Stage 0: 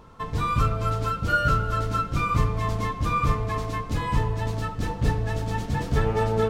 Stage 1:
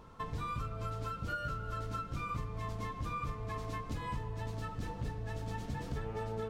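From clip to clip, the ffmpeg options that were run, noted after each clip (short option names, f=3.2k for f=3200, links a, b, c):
-af "acompressor=threshold=-30dB:ratio=6,volume=-5.5dB"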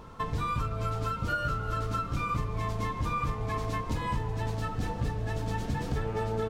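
-filter_complex "[0:a]asplit=8[a][b][c][d][e][f][g][h];[b]adelay=375,afreqshift=-130,volume=-17dB[i];[c]adelay=750,afreqshift=-260,volume=-20.7dB[j];[d]adelay=1125,afreqshift=-390,volume=-24.5dB[k];[e]adelay=1500,afreqshift=-520,volume=-28.2dB[l];[f]adelay=1875,afreqshift=-650,volume=-32dB[m];[g]adelay=2250,afreqshift=-780,volume=-35.7dB[n];[h]adelay=2625,afreqshift=-910,volume=-39.5dB[o];[a][i][j][k][l][m][n][o]amix=inputs=8:normalize=0,volume=7.5dB"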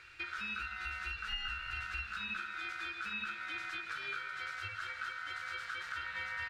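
-filter_complex "[0:a]aeval=exprs='val(0)*sin(2*PI*1400*n/s)':c=same,equalizer=f=125:t=o:w=1:g=5,equalizer=f=250:t=o:w=1:g=-10,equalizer=f=500:t=o:w=1:g=-6,equalizer=f=1k:t=o:w=1:g=-8,equalizer=f=2k:t=o:w=1:g=5,equalizer=f=4k:t=o:w=1:g=12,equalizer=f=8k:t=o:w=1:g=4,acrossover=split=3000[a][b];[b]acompressor=threshold=-45dB:ratio=4:attack=1:release=60[c];[a][c]amix=inputs=2:normalize=0,volume=-8dB"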